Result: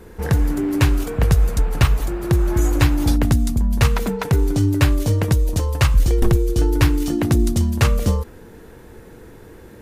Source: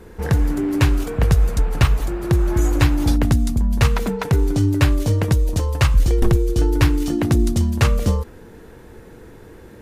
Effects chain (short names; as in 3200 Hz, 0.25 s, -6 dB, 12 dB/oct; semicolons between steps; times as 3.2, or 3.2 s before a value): high shelf 10000 Hz +5 dB